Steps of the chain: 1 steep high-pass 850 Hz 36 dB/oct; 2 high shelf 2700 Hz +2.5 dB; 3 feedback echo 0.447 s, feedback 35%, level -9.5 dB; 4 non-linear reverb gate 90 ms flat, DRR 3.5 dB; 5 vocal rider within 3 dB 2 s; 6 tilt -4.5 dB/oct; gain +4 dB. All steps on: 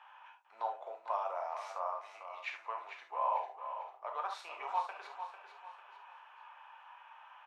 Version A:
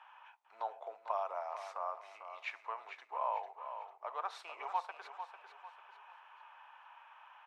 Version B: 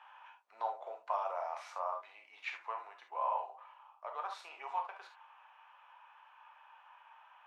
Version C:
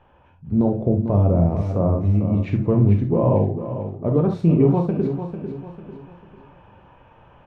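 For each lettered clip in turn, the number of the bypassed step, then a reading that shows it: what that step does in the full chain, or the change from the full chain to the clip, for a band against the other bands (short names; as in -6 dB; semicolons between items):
4, loudness change -2.0 LU; 3, momentary loudness spread change +4 LU; 1, crest factor change -5.0 dB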